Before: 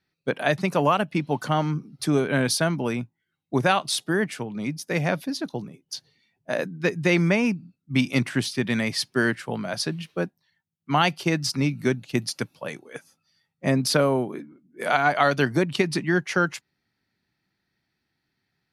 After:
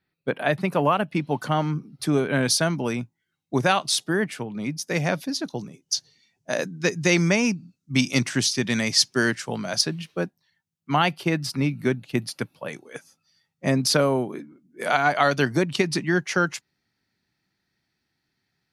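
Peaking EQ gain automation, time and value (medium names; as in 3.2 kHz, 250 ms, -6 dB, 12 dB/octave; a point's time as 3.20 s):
peaking EQ 6.2 kHz 0.99 oct
-10 dB
from 1.03 s -2 dB
from 2.43 s +5.5 dB
from 4.08 s -1 dB
from 4.77 s +6.5 dB
from 5.57 s +13 dB
from 9.81 s +3 dB
from 10.96 s -6 dB
from 12.73 s +4.5 dB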